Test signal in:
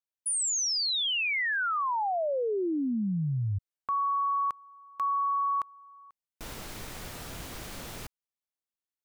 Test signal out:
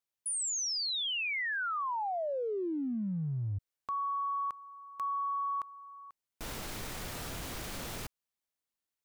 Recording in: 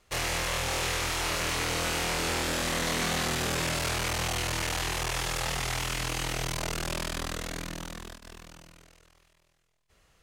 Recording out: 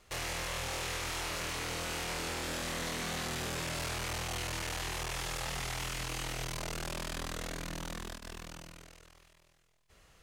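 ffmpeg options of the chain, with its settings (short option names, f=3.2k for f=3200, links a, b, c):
-af "acompressor=threshold=-36dB:ratio=4:attack=0.22:release=44:detection=peak,volume=2.5dB"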